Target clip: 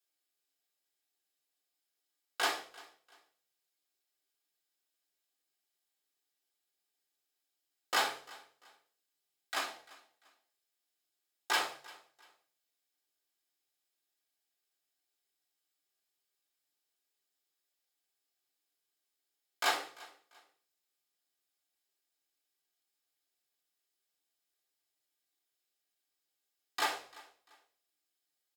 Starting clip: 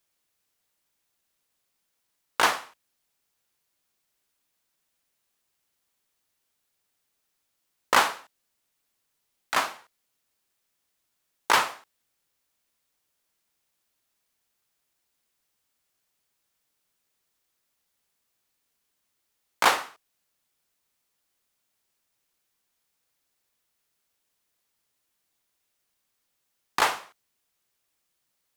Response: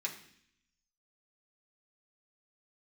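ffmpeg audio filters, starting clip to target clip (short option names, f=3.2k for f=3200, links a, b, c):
-filter_complex "[0:a]aecho=1:1:344|688:0.0841|0.0252[a];[1:a]atrim=start_sample=2205,asetrate=88200,aresample=44100[b];[a][b]afir=irnorm=-1:irlink=0,volume=-3dB"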